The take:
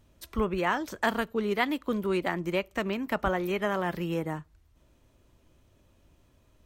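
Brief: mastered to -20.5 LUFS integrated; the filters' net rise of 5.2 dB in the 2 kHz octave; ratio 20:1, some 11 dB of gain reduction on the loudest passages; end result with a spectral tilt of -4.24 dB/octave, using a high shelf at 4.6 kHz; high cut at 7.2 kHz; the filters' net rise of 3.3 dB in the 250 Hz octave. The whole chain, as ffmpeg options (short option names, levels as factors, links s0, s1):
-af "lowpass=7200,equalizer=f=250:t=o:g=4.5,equalizer=f=2000:t=o:g=5,highshelf=f=4600:g=7.5,acompressor=threshold=0.0398:ratio=20,volume=4.73"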